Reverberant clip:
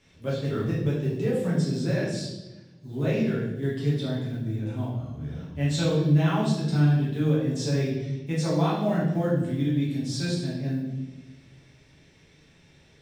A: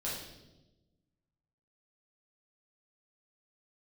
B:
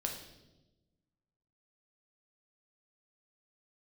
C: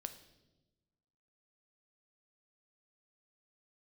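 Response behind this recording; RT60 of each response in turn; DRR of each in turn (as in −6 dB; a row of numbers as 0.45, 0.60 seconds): A; 1.1, 1.1, 1.1 seconds; −7.5, 1.5, 8.5 decibels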